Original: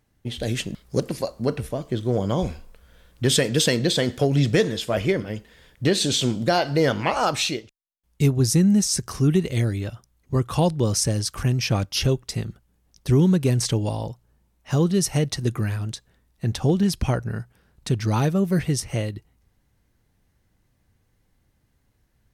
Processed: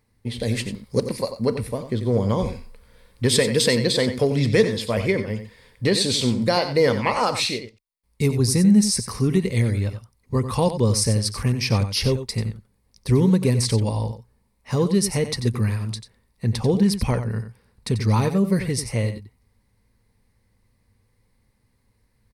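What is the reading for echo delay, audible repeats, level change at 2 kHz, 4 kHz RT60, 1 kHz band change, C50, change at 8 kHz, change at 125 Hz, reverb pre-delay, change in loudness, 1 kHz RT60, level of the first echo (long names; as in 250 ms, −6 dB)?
91 ms, 1, +1.0 dB, no reverb audible, +0.5 dB, no reverb audible, 0.0 dB, +0.5 dB, no reverb audible, +1.0 dB, no reverb audible, −10.5 dB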